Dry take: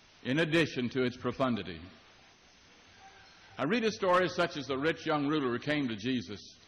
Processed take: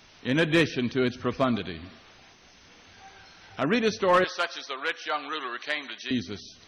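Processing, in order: 4.24–6.11 s: high-pass 830 Hz 12 dB/octave; trim +5.5 dB

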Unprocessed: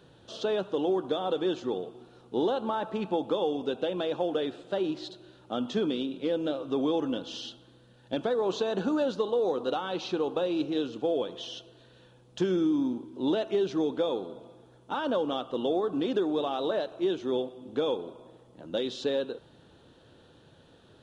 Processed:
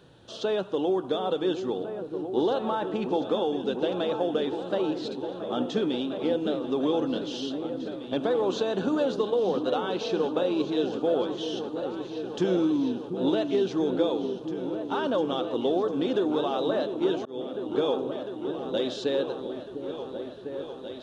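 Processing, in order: delay with an opening low-pass 701 ms, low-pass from 400 Hz, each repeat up 2 oct, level -6 dB; 17.16–17.66 s: slow attack 307 ms; trim +1.5 dB

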